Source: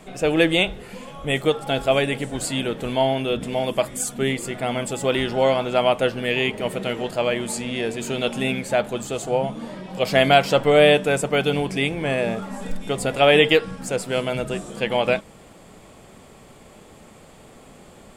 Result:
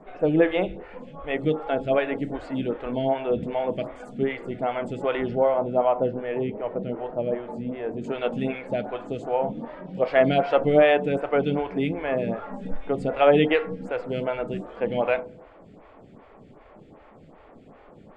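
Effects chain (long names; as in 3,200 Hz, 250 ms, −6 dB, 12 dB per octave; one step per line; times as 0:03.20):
low-pass filter 1,900 Hz 12 dB per octave, from 0:05.35 1,000 Hz, from 0:08.04 2,000 Hz
feedback delay network reverb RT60 0.86 s, low-frequency decay 1×, high-frequency decay 0.35×, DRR 12 dB
phaser with staggered stages 2.6 Hz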